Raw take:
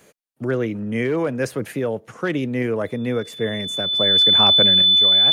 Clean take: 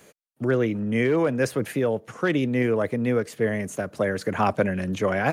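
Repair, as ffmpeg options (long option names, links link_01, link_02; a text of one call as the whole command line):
ffmpeg -i in.wav -af "bandreject=frequency=3500:width=30,asetnsamples=nb_out_samples=441:pad=0,asendcmd='4.82 volume volume 8dB',volume=0dB" out.wav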